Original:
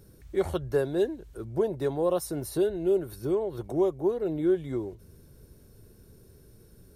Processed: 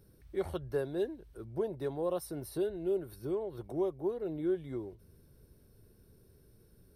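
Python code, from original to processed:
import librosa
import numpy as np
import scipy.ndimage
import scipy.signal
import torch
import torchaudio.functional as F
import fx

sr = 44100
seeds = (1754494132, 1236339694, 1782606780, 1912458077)

y = fx.peak_eq(x, sr, hz=7000.0, db=-14.0, octaves=0.22)
y = y * librosa.db_to_amplitude(-7.5)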